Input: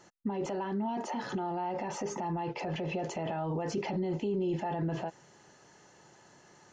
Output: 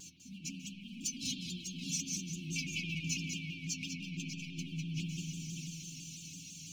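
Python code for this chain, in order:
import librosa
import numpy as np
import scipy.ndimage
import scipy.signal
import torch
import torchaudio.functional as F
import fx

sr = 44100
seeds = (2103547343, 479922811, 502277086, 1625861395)

y = scipy.signal.sosfilt(scipy.signal.butter(2, 56.0, 'highpass', fs=sr, output='sos'), x)
y = fx.high_shelf(y, sr, hz=4200.0, db=8.5)
y = fx.over_compress(y, sr, threshold_db=-39.0, ratio=-0.5)
y = fx.leveller(y, sr, passes=2)
y = fx.brickwall_bandstop(y, sr, low_hz=320.0, high_hz=2200.0)
y = fx.stiff_resonator(y, sr, f0_hz=87.0, decay_s=0.21, stiffness=0.002)
y = fx.echo_multitap(y, sr, ms=(198, 596), db=(-6.0, -7.5))
y = fx.rev_spring(y, sr, rt60_s=3.9, pass_ms=(49,), chirp_ms=60, drr_db=0.5)
y = fx.vibrato_shape(y, sr, shape='saw_down', rate_hz=6.0, depth_cents=100.0)
y = F.gain(torch.from_numpy(y), 1.5).numpy()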